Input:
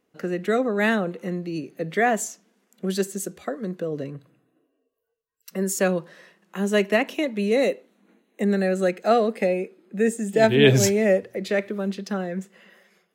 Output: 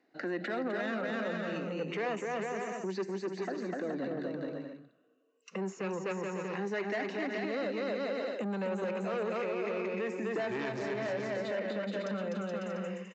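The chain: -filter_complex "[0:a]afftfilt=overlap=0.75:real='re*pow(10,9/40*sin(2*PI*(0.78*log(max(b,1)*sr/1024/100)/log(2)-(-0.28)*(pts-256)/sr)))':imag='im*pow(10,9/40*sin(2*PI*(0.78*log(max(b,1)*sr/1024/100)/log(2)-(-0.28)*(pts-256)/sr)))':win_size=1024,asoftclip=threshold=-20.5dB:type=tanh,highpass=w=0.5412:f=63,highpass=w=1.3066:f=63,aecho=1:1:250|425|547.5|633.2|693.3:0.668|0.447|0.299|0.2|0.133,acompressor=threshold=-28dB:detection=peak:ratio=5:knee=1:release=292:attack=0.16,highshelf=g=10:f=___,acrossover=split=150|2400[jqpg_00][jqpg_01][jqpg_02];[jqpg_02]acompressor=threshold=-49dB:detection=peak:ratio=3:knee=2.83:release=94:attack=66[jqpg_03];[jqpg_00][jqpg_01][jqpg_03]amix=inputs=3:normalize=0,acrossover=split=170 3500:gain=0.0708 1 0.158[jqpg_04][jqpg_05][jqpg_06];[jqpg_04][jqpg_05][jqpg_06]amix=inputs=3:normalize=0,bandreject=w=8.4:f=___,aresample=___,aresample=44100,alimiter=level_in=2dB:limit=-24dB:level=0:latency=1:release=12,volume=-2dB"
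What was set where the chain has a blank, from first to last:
3400, 3300, 16000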